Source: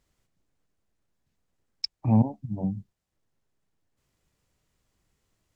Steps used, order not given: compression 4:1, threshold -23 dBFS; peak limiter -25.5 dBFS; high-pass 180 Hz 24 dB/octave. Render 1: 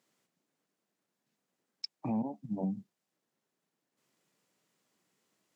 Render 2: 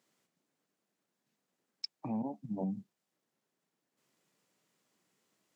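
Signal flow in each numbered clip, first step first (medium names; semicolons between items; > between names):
compression > high-pass > peak limiter; compression > peak limiter > high-pass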